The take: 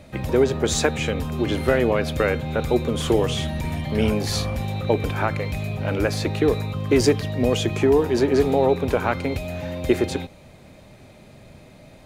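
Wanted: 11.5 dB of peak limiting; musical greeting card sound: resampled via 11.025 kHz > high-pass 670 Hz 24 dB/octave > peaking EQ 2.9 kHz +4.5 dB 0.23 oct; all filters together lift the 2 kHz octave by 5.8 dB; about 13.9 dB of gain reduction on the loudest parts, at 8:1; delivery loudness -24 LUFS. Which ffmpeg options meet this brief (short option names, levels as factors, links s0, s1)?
-af "equalizer=f=2000:t=o:g=7,acompressor=threshold=0.0447:ratio=8,alimiter=level_in=1.19:limit=0.0631:level=0:latency=1,volume=0.841,aresample=11025,aresample=44100,highpass=f=670:w=0.5412,highpass=f=670:w=1.3066,equalizer=f=2900:t=o:w=0.23:g=4.5,volume=5.96"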